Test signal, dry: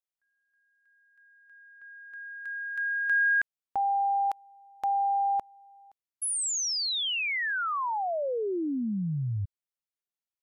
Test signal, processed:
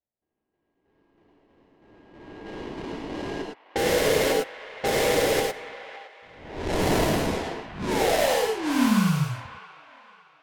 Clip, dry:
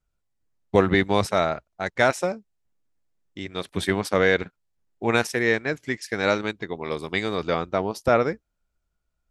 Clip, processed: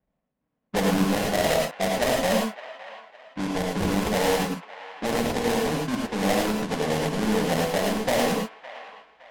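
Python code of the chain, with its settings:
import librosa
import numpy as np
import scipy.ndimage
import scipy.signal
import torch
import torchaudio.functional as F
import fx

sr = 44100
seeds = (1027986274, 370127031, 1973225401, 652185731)

p1 = scipy.signal.sosfilt(scipy.signal.butter(4, 4500.0, 'lowpass', fs=sr, output='sos'), x)
p2 = fx.rotary(p1, sr, hz=0.7)
p3 = scipy.signal.sosfilt(scipy.signal.butter(2, 98.0, 'highpass', fs=sr, output='sos'), p2)
p4 = fx.over_compress(p3, sr, threshold_db=-31.0, ratio=-0.5)
p5 = p3 + (p4 * librosa.db_to_amplitude(1.0))
p6 = 10.0 ** (-19.0 / 20.0) * np.tanh(p5 / 10.0 ** (-19.0 / 20.0))
p7 = fx.fixed_phaser(p6, sr, hz=370.0, stages=6)
p8 = fx.sample_hold(p7, sr, seeds[0], rate_hz=1300.0, jitter_pct=20)
p9 = fx.env_lowpass(p8, sr, base_hz=2500.0, full_db=-26.0)
p10 = p9 + fx.echo_wet_bandpass(p9, sr, ms=563, feedback_pct=37, hz=1500.0, wet_db=-12.5, dry=0)
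p11 = fx.rev_gated(p10, sr, seeds[1], gate_ms=130, shape='rising', drr_db=0.0)
y = p11 * librosa.db_to_amplitude(3.0)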